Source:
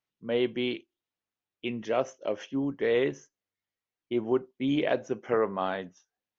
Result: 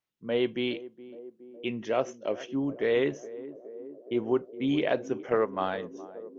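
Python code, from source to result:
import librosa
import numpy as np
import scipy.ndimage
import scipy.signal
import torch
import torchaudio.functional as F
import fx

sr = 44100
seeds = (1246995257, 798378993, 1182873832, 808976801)

p1 = fx.transient(x, sr, attack_db=2, sustain_db=-7, at=(5.29, 5.83))
y = p1 + fx.echo_banded(p1, sr, ms=417, feedback_pct=80, hz=400.0, wet_db=-15.5, dry=0)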